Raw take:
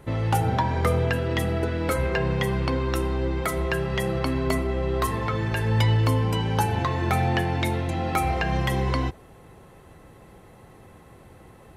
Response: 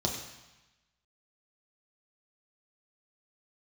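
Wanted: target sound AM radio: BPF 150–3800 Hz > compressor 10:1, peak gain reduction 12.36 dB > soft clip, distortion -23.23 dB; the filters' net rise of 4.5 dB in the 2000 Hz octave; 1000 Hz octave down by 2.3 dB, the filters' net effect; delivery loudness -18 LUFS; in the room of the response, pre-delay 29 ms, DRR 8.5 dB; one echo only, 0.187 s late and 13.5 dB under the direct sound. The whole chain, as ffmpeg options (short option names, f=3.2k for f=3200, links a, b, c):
-filter_complex "[0:a]equalizer=f=1k:t=o:g=-4.5,equalizer=f=2k:t=o:g=7,aecho=1:1:187:0.211,asplit=2[a][b];[1:a]atrim=start_sample=2205,adelay=29[c];[b][c]afir=irnorm=-1:irlink=0,volume=-15dB[d];[a][d]amix=inputs=2:normalize=0,highpass=150,lowpass=3.8k,acompressor=threshold=-30dB:ratio=10,asoftclip=threshold=-23dB,volume=16.5dB"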